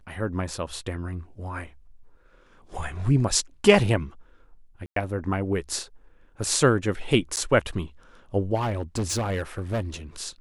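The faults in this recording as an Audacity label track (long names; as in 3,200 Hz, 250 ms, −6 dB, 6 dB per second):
4.860000	4.960000	drop-out 103 ms
7.360000	7.370000	drop-out 9.5 ms
8.550000	9.810000	clipping −22.5 dBFS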